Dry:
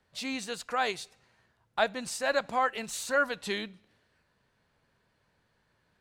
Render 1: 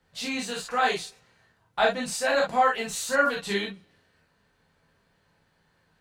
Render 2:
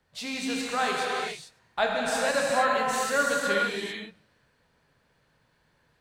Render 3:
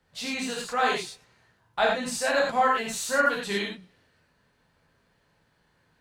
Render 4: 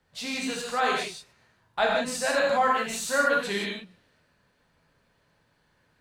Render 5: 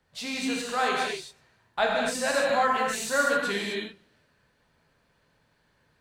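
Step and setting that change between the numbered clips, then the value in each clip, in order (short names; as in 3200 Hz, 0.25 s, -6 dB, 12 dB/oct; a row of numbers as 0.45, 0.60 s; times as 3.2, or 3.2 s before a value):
non-linear reverb, gate: 80, 470, 130, 200, 290 ms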